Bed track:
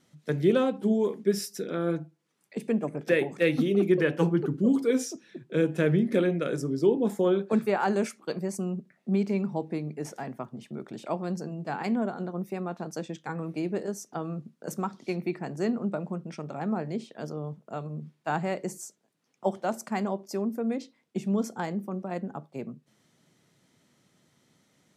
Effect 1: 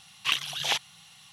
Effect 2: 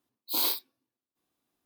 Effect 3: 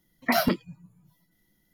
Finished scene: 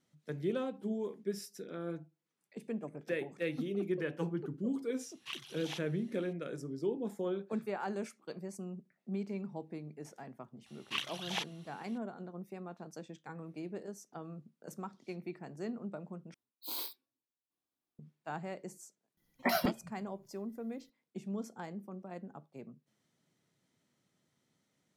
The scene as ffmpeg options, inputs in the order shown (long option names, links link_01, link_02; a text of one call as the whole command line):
ffmpeg -i bed.wav -i cue0.wav -i cue1.wav -i cue2.wav -filter_complex "[1:a]asplit=2[link_01][link_02];[0:a]volume=-12dB[link_03];[link_02]highshelf=frequency=3100:gain=-6.5[link_04];[link_03]asplit=2[link_05][link_06];[link_05]atrim=end=16.344[link_07];[2:a]atrim=end=1.65,asetpts=PTS-STARTPTS,volume=-12.5dB[link_08];[link_06]atrim=start=17.986[link_09];[link_01]atrim=end=1.32,asetpts=PTS-STARTPTS,volume=-17dB,afade=type=in:duration=0.004:curve=hsin,afade=type=out:start_time=1.316:duration=0.004:curve=hsin,adelay=220941S[link_10];[link_04]atrim=end=1.32,asetpts=PTS-STARTPTS,volume=-7.5dB,afade=type=in:duration=0.004:curve=hsin,afade=type=out:start_time=1.316:duration=0.004:curve=hsin,adelay=470106S[link_11];[3:a]atrim=end=1.73,asetpts=PTS-STARTPTS,volume=-8dB,afade=type=in:duration=0.004:curve=hsin,afade=type=out:start_time=1.726:duration=0.004:curve=hsin,adelay=19170[link_12];[link_07][link_08]acrossfade=duration=0.004:curve1=hsin:curve2=hsin[link_13];[link_13][link_09]acrossfade=duration=0.004:curve1=hsin:curve2=hsin[link_14];[link_14][link_10][link_11][link_12]amix=inputs=4:normalize=0" out.wav